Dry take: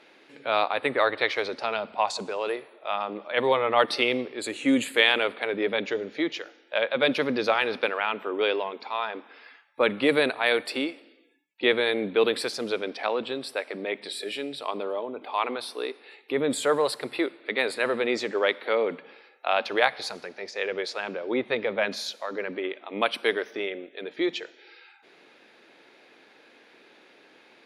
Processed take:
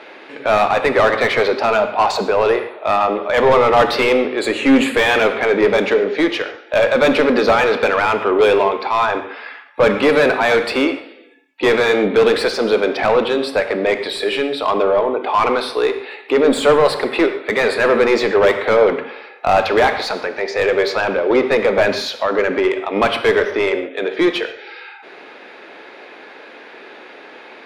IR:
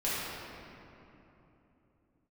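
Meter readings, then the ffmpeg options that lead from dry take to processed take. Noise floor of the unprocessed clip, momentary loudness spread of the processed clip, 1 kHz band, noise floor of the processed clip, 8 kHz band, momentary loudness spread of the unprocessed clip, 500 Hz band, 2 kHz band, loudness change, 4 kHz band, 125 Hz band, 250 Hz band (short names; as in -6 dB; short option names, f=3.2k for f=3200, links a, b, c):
-57 dBFS, 7 LU, +12.0 dB, -40 dBFS, +6.0 dB, 10 LU, +12.5 dB, +9.0 dB, +11.0 dB, +6.0 dB, +14.0 dB, +11.0 dB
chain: -filter_complex "[0:a]asplit=2[a][b];[b]highpass=f=720:p=1,volume=28dB,asoftclip=type=tanh:threshold=-2.5dB[c];[a][c]amix=inputs=2:normalize=0,lowpass=f=1.1k:p=1,volume=-6dB,asplit=2[d][e];[1:a]atrim=start_sample=2205,atrim=end_sample=6615[f];[e][f]afir=irnorm=-1:irlink=0,volume=-12.5dB[g];[d][g]amix=inputs=2:normalize=0,volume=-1dB"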